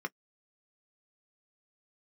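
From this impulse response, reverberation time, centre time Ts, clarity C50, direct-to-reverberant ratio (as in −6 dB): non-exponential decay, 3 ms, 47.5 dB, 5.5 dB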